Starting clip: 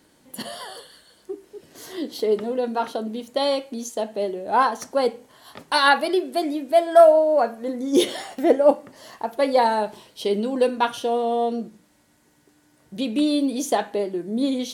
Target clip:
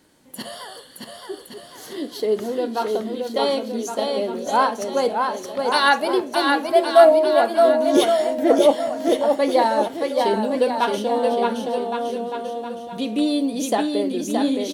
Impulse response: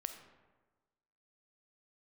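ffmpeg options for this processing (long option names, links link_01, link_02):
-af "aecho=1:1:620|1116|1513|1830|2084:0.631|0.398|0.251|0.158|0.1"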